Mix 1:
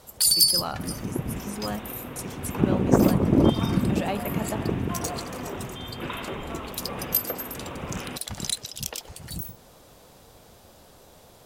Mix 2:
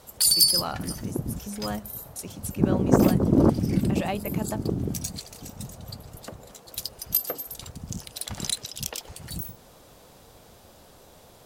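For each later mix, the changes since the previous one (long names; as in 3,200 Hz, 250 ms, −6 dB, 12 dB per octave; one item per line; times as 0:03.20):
second sound: muted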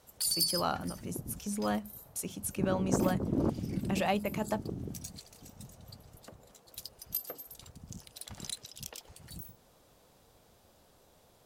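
background −11.5 dB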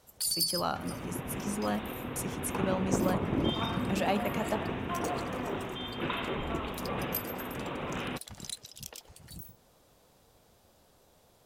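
second sound: unmuted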